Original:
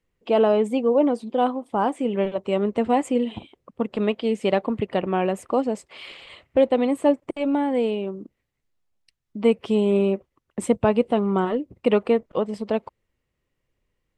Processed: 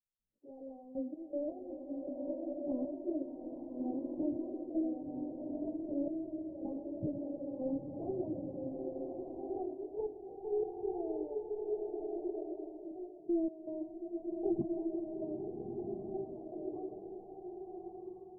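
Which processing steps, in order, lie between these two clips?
gliding tape speed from 119% -> 174%; on a send: flutter echo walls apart 10.9 m, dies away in 0.34 s; on the sum: plain phase-vocoder stretch 1.9×; spectral noise reduction 14 dB; in parallel at -7 dB: hard clipper -23 dBFS, distortion -8 dB; on the sum: trance gate ".x...x.x..x.xxx" 79 bpm -12 dB; Gaussian low-pass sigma 21 samples; swelling reverb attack 1370 ms, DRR -0.5 dB; trim -6 dB

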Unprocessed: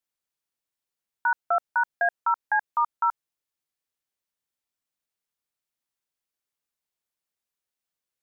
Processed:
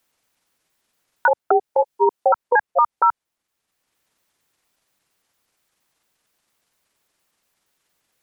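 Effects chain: pitch shift switched off and on -9.5 st, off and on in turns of 116 ms; three bands compressed up and down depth 40%; trim +8 dB

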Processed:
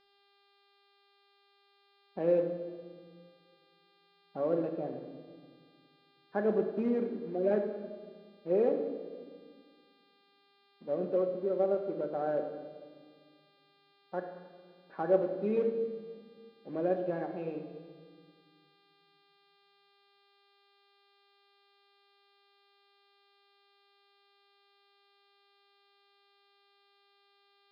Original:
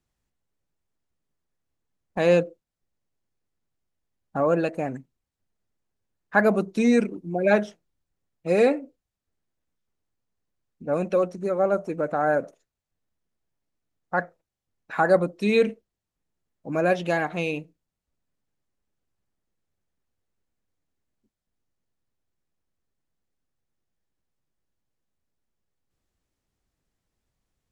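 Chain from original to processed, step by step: companded quantiser 4-bit; band-pass filter 400 Hz, Q 1.4; mains buzz 400 Hz, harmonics 13, -61 dBFS -1 dB/octave; distance through air 200 m; simulated room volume 1800 m³, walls mixed, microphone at 1.1 m; trim -6.5 dB

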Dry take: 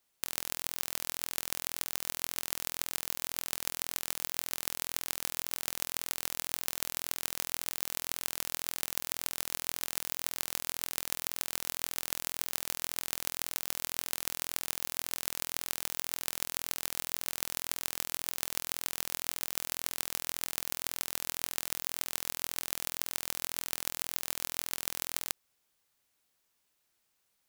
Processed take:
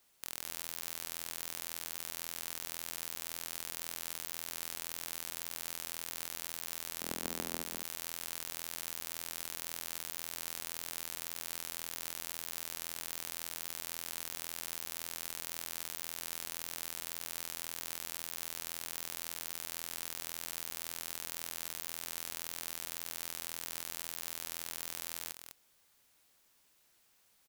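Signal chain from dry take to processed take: 7.00–7.63 s: high-pass 220 Hz 24 dB/octave; saturation -19.5 dBFS, distortion -9 dB; on a send: delay 203 ms -8.5 dB; on the sum: trim +6.5 dB

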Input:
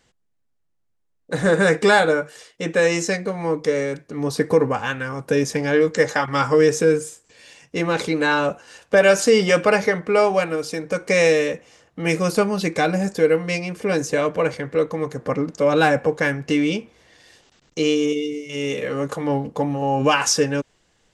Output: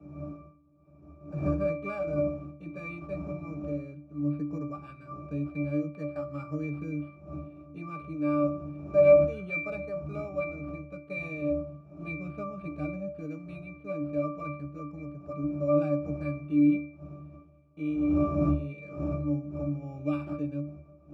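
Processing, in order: wind noise 480 Hz -26 dBFS; graphic EQ with 31 bands 200 Hz +8 dB, 500 Hz +5 dB, 1 kHz +8 dB, 2.5 kHz +8 dB; sample-and-hold 7×; high-pass 68 Hz; pitch-class resonator D, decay 0.45 s

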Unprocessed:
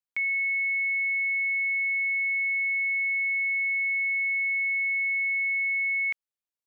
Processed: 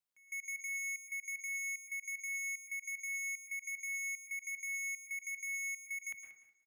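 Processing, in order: hum notches 60/120/180/240 Hz; saturation -39.5 dBFS, distortion -9 dB; trance gate "xx..x.x.xx" 188 bpm -24 dB; feedback delay 184 ms, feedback 22%, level -13 dB; on a send at -4 dB: reverberation RT60 0.55 s, pre-delay 103 ms

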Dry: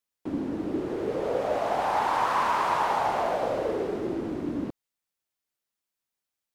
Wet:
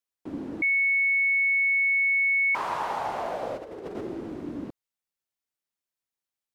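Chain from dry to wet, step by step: 0.62–2.55 s: bleep 2.21 kHz -15.5 dBFS; 3.57–4.01 s: compressor with a negative ratio -32 dBFS, ratio -0.5; trim -4.5 dB

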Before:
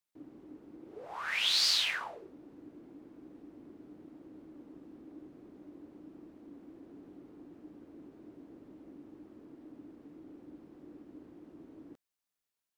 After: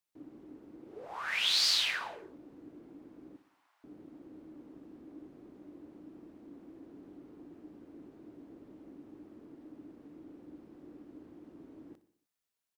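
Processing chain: 3.36–3.84 s: steep high-pass 860 Hz 36 dB/octave; on a send: feedback delay 61 ms, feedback 56%, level -15 dB

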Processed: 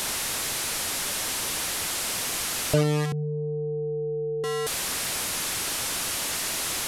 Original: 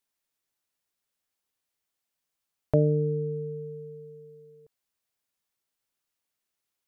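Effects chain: one-bit delta coder 64 kbps, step -21.5 dBFS; 3.12–4.44 s: steep low-pass 590 Hz 48 dB/octave

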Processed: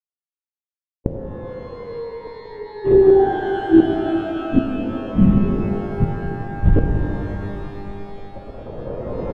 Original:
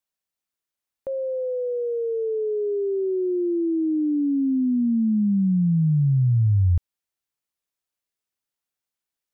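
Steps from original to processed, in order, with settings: spectral levelling over time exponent 0.6; recorder AGC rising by 9.5 dB/s; on a send: early reflections 17 ms -4.5 dB, 43 ms -7.5 dB; on the sum: bit crusher 7-bit; peaking EQ 520 Hz +14.5 dB 1.5 oct; band-stop 400 Hz, Q 12; LPC vocoder at 8 kHz whisper; level-controlled noise filter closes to 570 Hz, open at -3 dBFS; in parallel at +2.5 dB: compression 6:1, threshold -18 dBFS, peak gain reduction 15.5 dB; on the sum: inverted gate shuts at -5 dBFS, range -33 dB; pitch-shifted reverb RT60 3.3 s, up +12 st, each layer -8 dB, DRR 1.5 dB; trim +1 dB

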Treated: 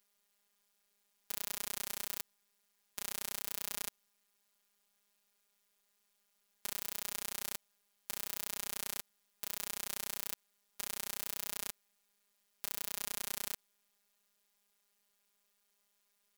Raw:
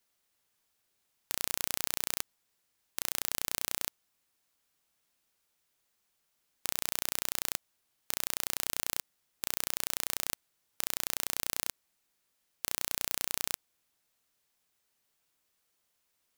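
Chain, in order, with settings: robot voice 203 Hz; peak limiter -15 dBFS, peak gain reduction 7.5 dB; trim +2 dB

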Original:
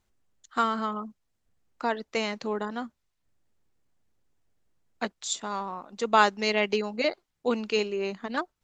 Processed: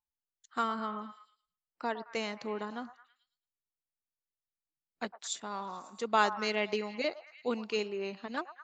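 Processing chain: spectral noise reduction 23 dB; repeats whose band climbs or falls 109 ms, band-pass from 920 Hz, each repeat 0.7 oct, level -10.5 dB; trim -6.5 dB

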